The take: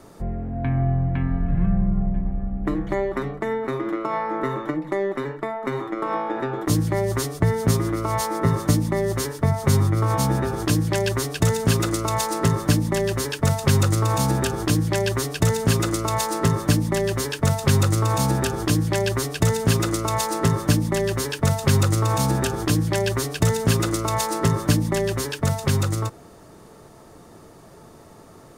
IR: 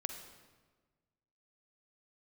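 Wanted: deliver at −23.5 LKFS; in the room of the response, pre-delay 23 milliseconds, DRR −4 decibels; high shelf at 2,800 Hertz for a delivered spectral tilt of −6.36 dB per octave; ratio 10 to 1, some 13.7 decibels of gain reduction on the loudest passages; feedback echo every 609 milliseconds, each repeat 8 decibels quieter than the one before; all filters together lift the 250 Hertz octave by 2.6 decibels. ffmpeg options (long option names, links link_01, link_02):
-filter_complex "[0:a]equalizer=frequency=250:width_type=o:gain=4,highshelf=frequency=2800:gain=-7.5,acompressor=threshold=-27dB:ratio=10,aecho=1:1:609|1218|1827|2436|3045:0.398|0.159|0.0637|0.0255|0.0102,asplit=2[link_01][link_02];[1:a]atrim=start_sample=2205,adelay=23[link_03];[link_02][link_03]afir=irnorm=-1:irlink=0,volume=4.5dB[link_04];[link_01][link_04]amix=inputs=2:normalize=0,volume=1.5dB"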